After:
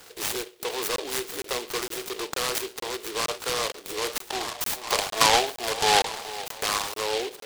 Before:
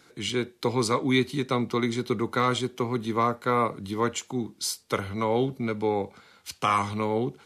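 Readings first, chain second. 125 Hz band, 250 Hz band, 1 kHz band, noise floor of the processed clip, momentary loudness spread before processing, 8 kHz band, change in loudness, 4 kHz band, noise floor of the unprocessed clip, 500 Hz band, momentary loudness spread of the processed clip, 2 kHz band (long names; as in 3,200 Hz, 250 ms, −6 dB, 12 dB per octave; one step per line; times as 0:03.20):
−14.5 dB, −12.0 dB, +0.5 dB, −52 dBFS, 6 LU, +8.5 dB, +0.5 dB, +8.0 dB, −60 dBFS, −2.5 dB, 11 LU, +4.0 dB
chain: in parallel at +2 dB: downward compressor, threshold −34 dBFS, peak gain reduction 15 dB
on the sum: brickwall limiter −19 dBFS, peak gain reduction 9 dB
Butterworth high-pass 410 Hz 36 dB per octave
on a send: delay that swaps between a low-pass and a high-pass 426 ms, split 820 Hz, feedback 67%, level −13 dB
on the sum: gain on a spectral selection 0:04.32–0:06.61, 590–1,200 Hz +12 dB
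regular buffer underruns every 0.46 s, samples 1,024, zero, from 0:00.96
short delay modulated by noise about 3,000 Hz, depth 0.16 ms
level +2.5 dB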